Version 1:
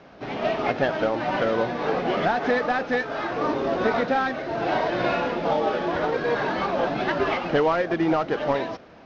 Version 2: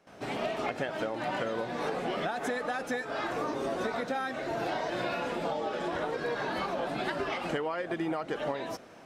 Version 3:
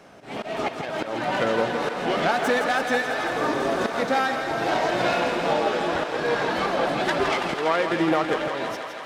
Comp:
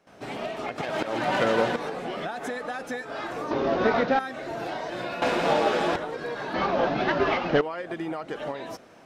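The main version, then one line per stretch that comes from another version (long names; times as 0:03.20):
2
0:00.78–0:01.76: punch in from 3
0:03.51–0:04.19: punch in from 1
0:05.22–0:05.96: punch in from 3
0:06.54–0:07.61: punch in from 1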